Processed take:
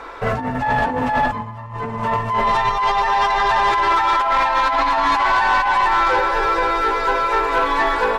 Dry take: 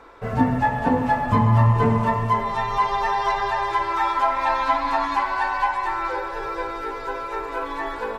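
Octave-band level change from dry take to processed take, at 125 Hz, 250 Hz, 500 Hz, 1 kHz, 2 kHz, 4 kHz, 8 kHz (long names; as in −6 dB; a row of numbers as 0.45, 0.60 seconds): −8.5 dB, −3.0 dB, +4.5 dB, +5.5 dB, +8.0 dB, +9.5 dB, can't be measured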